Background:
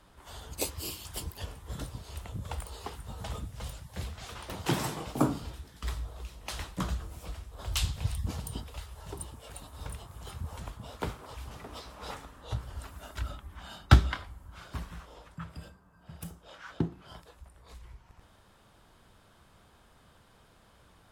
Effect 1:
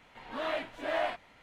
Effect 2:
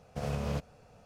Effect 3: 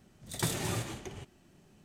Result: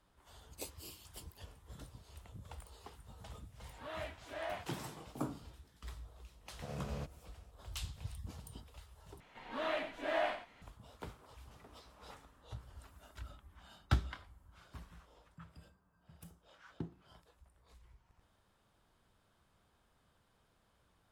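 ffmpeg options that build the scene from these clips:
-filter_complex "[1:a]asplit=2[a][b];[0:a]volume=-13dB[c];[a]highpass=280[d];[2:a]highpass=61[e];[b]aecho=1:1:88:0.355[f];[c]asplit=2[g][h];[g]atrim=end=9.204[i];[f]atrim=end=1.42,asetpts=PTS-STARTPTS,volume=-3.5dB[j];[h]atrim=start=10.616[k];[d]atrim=end=1.42,asetpts=PTS-STARTPTS,volume=-10.5dB,afade=t=in:d=0.1,afade=t=out:st=1.32:d=0.1,adelay=3480[l];[e]atrim=end=1.05,asetpts=PTS-STARTPTS,volume=-9.5dB,afade=t=in:d=0.004:c=hsin,afade=t=out:st=1.046:d=0.004:c=hsin,adelay=6460[m];[i][j]acrossfade=d=0.004:c1=hsin:c2=hsin[n];[n][k]acrossfade=d=0.004:c1=hsin:c2=hsin[o];[o][l][m]amix=inputs=3:normalize=0"

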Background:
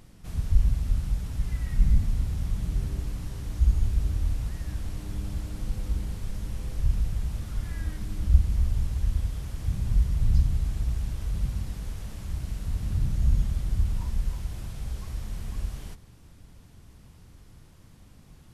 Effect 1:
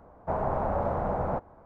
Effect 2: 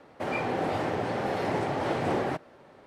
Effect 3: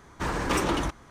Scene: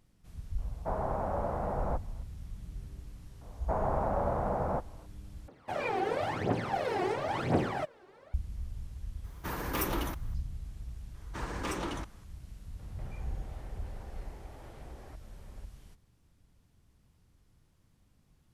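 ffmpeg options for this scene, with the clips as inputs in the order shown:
-filter_complex "[1:a]asplit=2[a][b];[2:a]asplit=2[c][d];[3:a]asplit=2[e][f];[0:a]volume=-15dB[g];[c]aphaser=in_gain=1:out_gain=1:delay=2.8:decay=0.72:speed=0.97:type=triangular[h];[e]aexciter=amount=7.7:drive=7.7:freq=11k[i];[d]acompressor=threshold=-43dB:ratio=6:attack=3.2:release=140:knee=1:detection=peak[j];[g]asplit=2[k][l];[k]atrim=end=5.484[m];[h]atrim=end=2.86,asetpts=PTS-STARTPTS,volume=-6dB[n];[l]atrim=start=8.336[o];[a]atrim=end=1.65,asetpts=PTS-STARTPTS,volume=-5dB,afade=t=in:d=0.004:c=hsin,afade=t=out:st=1.646:d=0.004:c=hsin,adelay=580[p];[b]atrim=end=1.65,asetpts=PTS-STARTPTS,volume=-2.5dB,afade=t=in:d=0.004:c=hsin,afade=t=out:st=1.646:d=0.004:c=hsin,adelay=150381S[q];[i]atrim=end=1.1,asetpts=PTS-STARTPTS,volume=-8dB,afade=t=in:d=0.004:c=hsin,afade=t=out:st=1.096:d=0.004:c=hsin,adelay=9240[r];[f]atrim=end=1.1,asetpts=PTS-STARTPTS,volume=-10dB,afade=t=in:d=0.004:c=hsin,afade=t=out:st=1.096:d=0.004:c=hsin,adelay=491274S[s];[j]atrim=end=2.86,asetpts=PTS-STARTPTS,volume=-8dB,afade=t=in:d=0.004:c=hsin,afade=t=out:st=2.856:d=0.004:c=hsin,adelay=12790[t];[m][n]acrossfade=d=0.004:c1=hsin:c2=hsin[u];[u][o]acrossfade=d=0.004:c1=hsin:c2=hsin[v];[v][p][q][r][s][t]amix=inputs=6:normalize=0"

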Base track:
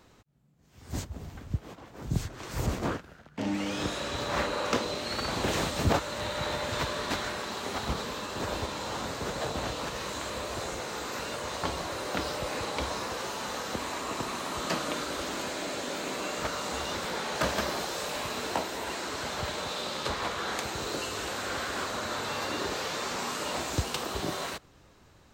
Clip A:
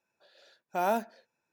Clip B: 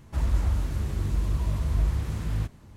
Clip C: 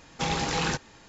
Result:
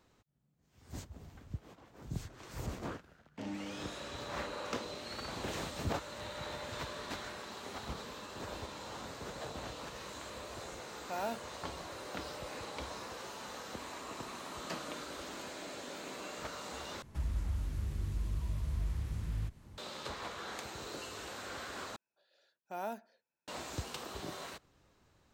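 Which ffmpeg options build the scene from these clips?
-filter_complex "[1:a]asplit=2[a][b];[0:a]volume=-10.5dB[c];[2:a]acrossover=split=110|300|1600[d][e][f][g];[d]acompressor=threshold=-30dB:ratio=3[h];[e]acompressor=threshold=-44dB:ratio=3[i];[f]acompressor=threshold=-55dB:ratio=3[j];[g]acompressor=threshold=-54dB:ratio=3[k];[h][i][j][k]amix=inputs=4:normalize=0[l];[c]asplit=3[m][n][o];[m]atrim=end=17.024[p];[l]atrim=end=2.76,asetpts=PTS-STARTPTS,volume=-4.5dB[q];[n]atrim=start=19.776:end=21.964[r];[b]atrim=end=1.52,asetpts=PTS-STARTPTS,volume=-12dB[s];[o]atrim=start=23.476[t];[a]atrim=end=1.52,asetpts=PTS-STARTPTS,volume=-10dB,afade=t=in:d=0.004:c=hsin,afade=t=out:st=1.516:d=0.004:c=hsin,adelay=10350[u];[p][q]acrossfade=d=0.004:c1=hsin:c2=hsin[v];[v][r]acrossfade=d=0.004:c1=hsin:c2=hsin[w];[w][s]acrossfade=d=0.004:c1=hsin:c2=hsin[x];[x][t]acrossfade=d=0.004:c1=hsin:c2=hsin[y];[y][u]amix=inputs=2:normalize=0"

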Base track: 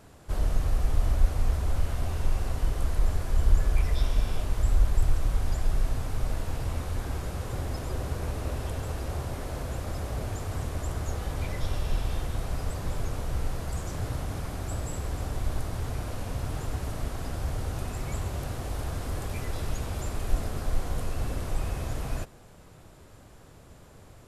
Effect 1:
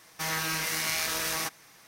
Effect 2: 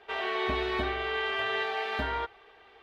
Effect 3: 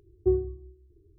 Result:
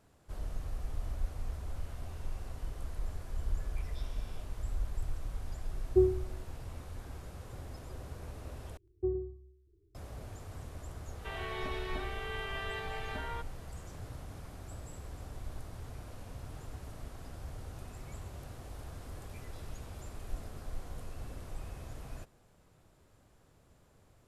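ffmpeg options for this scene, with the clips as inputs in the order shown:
-filter_complex "[3:a]asplit=2[a][b];[0:a]volume=-13dB[c];[b]aecho=1:1:107:0.355[d];[c]asplit=2[e][f];[e]atrim=end=8.774[g];[d]atrim=end=1.18,asetpts=PTS-STARTPTS,volume=-9.5dB[h];[f]atrim=start=9.946[i];[a]atrim=end=1.18,asetpts=PTS-STARTPTS,volume=-1dB,afade=t=in:d=0.004:c=hsin,afade=t=out:st=1.176:d=0.004:c=hsin,adelay=5700[j];[2:a]atrim=end=2.82,asetpts=PTS-STARTPTS,volume=-9.5dB,afade=t=in:d=0.004:c=hsin,afade=t=out:st=2.816:d=0.004:c=hsin,adelay=11160[k];[g][h]acrossfade=d=0.004:c1=hsin:c2=hsin[l];[l][i]acrossfade=d=0.004:c1=hsin:c2=hsin[m];[m][j][k]amix=inputs=3:normalize=0"

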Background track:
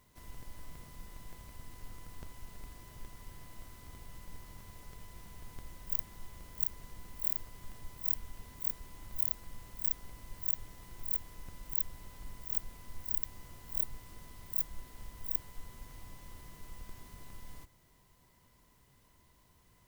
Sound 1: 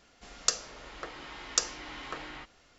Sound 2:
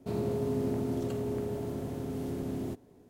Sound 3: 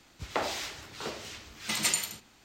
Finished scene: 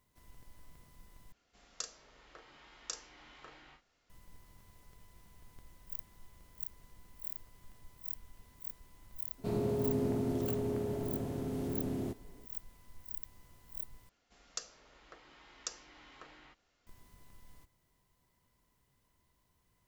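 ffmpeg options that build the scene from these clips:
-filter_complex "[1:a]asplit=2[a][b];[0:a]volume=-9dB[c];[a]asplit=2[d][e];[e]adelay=35,volume=-6.5dB[f];[d][f]amix=inputs=2:normalize=0[g];[c]asplit=3[h][i][j];[h]atrim=end=1.324[k];[g]atrim=end=2.78,asetpts=PTS-STARTPTS,volume=-15dB[l];[i]atrim=start=4.096:end=14.094[m];[b]atrim=end=2.78,asetpts=PTS-STARTPTS,volume=-14.5dB[n];[j]atrim=start=16.866[o];[2:a]atrim=end=3.09,asetpts=PTS-STARTPTS,volume=-1.5dB,afade=t=in:d=0.004:c=hsin,afade=t=out:st=3.086:d=0.004:c=hsin,adelay=413658S[p];[k][l]acrossfade=d=0.004:c1=hsin:c2=hsin[q];[q][m]acrossfade=d=0.004:c1=hsin:c2=hsin[r];[r][n]acrossfade=d=0.004:c1=hsin:c2=hsin[s];[s][o]acrossfade=d=0.004:c1=hsin:c2=hsin[t];[t][p]amix=inputs=2:normalize=0"

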